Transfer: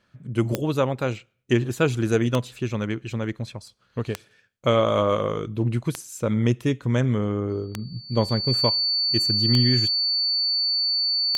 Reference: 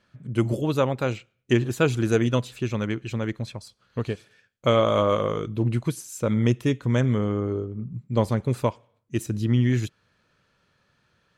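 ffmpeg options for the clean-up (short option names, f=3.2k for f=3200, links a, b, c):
-af "adeclick=t=4,bandreject=f=4.5k:w=30"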